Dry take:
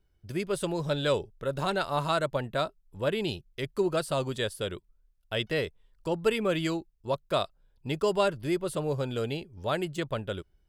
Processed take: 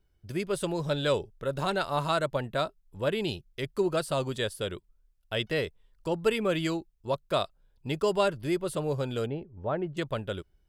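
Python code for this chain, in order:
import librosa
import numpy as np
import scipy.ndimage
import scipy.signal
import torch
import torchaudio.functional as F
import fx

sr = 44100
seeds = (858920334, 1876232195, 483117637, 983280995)

y = fx.lowpass(x, sr, hz=1200.0, slope=12, at=(9.26, 9.97))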